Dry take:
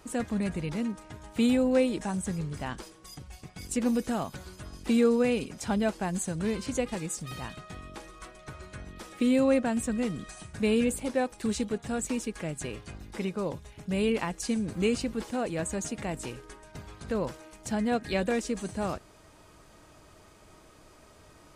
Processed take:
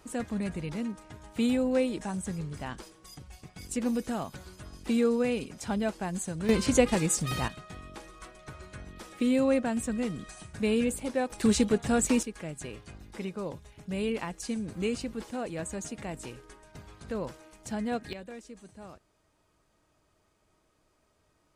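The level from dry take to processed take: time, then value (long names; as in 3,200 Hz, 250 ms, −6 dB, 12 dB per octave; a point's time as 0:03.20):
−2.5 dB
from 0:06.49 +7.5 dB
from 0:07.48 −1.5 dB
from 0:11.30 +6 dB
from 0:12.23 −4 dB
from 0:18.13 −15.5 dB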